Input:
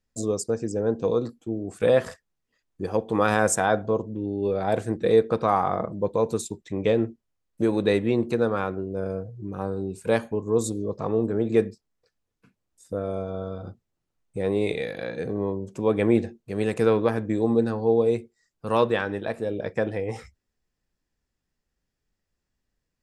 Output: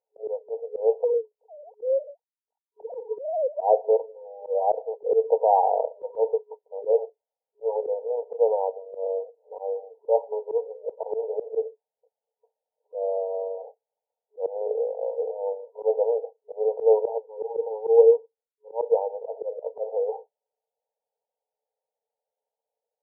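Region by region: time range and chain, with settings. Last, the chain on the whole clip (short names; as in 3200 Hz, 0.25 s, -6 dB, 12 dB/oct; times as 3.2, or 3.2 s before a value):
1.04–3.61 sine-wave speech + compressor 10:1, threshold -24 dBFS
17.18–18.92 median filter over 41 samples + comb 2.3 ms, depth 40% + three-band expander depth 100%
whole clip: FFT band-pass 420–960 Hz; auto swell 0.107 s; gain +5 dB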